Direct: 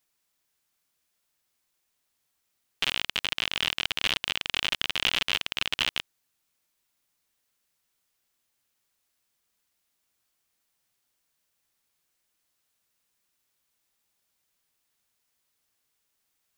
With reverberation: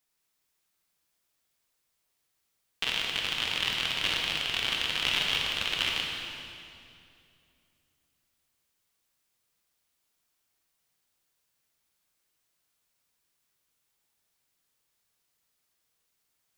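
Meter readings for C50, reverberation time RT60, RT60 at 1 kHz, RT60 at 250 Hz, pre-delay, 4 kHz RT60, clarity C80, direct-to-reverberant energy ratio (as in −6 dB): 0.5 dB, 2.6 s, 2.4 s, 3.1 s, 19 ms, 2.2 s, 2.0 dB, −1.5 dB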